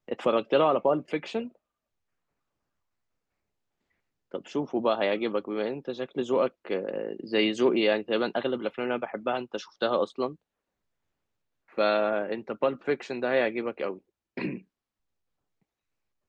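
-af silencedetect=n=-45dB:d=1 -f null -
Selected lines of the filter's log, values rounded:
silence_start: 1.49
silence_end: 4.32 | silence_duration: 2.83
silence_start: 10.35
silence_end: 11.73 | silence_duration: 1.38
silence_start: 14.59
silence_end: 16.28 | silence_duration: 1.69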